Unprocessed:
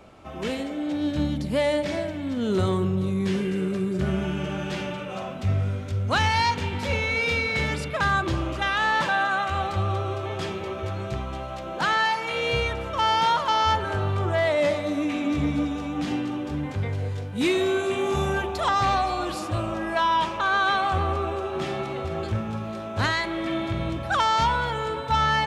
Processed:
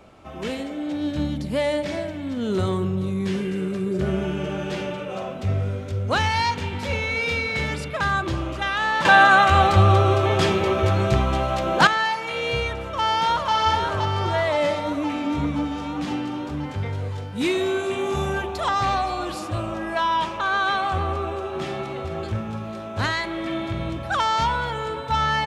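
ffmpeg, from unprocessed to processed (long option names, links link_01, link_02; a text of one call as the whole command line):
ffmpeg -i in.wav -filter_complex "[0:a]asettb=1/sr,asplit=3[link_01][link_02][link_03];[link_01]atrim=end=3.864[link_04];[link_02]atrim=start=3.86:end=6.21,asetpts=PTS-STARTPTS,afade=type=in:duration=0.004:curve=qsin,afade=type=out:start_time=2.346:duration=0.004:curve=qsin,equalizer=frequency=460:width=1.7:gain=6.5[link_05];[link_03]atrim=start=6.206[link_06];[link_04][link_05]acrossfade=duration=0.004:curve1=hsin:curve2=qsin[link_07];[link_07][link_06]acrossfade=duration=0.004:curve1=qsin:curve2=hsin,asplit=2[link_08][link_09];[link_09]afade=type=in:start_time=12.76:duration=0.01,afade=type=out:start_time=13.53:duration=0.01,aecho=0:1:520|1040|1560|2080|2600|3120|3640|4160|4680|5200|5720|6240:0.595662|0.416964|0.291874|0.204312|0.143018|0.100113|0.0700791|0.0490553|0.0343387|0.0240371|0.016826|0.0117782[link_10];[link_08][link_10]amix=inputs=2:normalize=0,asettb=1/sr,asplit=3[link_11][link_12][link_13];[link_11]atrim=end=14.794[link_14];[link_12]atrim=start=14.79:end=15.72,asetpts=PTS-STARTPTS,afade=type=in:duration=0.004:curve=qsin,afade=type=out:start_time=0.926:duration=0.004:curve=qsin,equalizer=frequency=4600:width_type=o:width=2.2:gain=-3[link_15];[link_13]atrim=start=15.716[link_16];[link_14][link_15]acrossfade=duration=0.004:curve1=hsin:curve2=qsin[link_17];[link_17][link_16]acrossfade=duration=0.004:curve1=qsin:curve2=hsin,asplit=3[link_18][link_19][link_20];[link_18]atrim=end=9.052[link_21];[link_19]atrim=start=9.048:end=11.872,asetpts=PTS-STARTPTS,volume=10.5dB[link_22];[link_20]atrim=start=11.868[link_23];[link_21][link_22]acrossfade=duration=0.004:curve1=hsin:curve2=hsin[link_24];[link_24][link_23]acrossfade=duration=0.004:curve1=hsin:curve2=hsin" out.wav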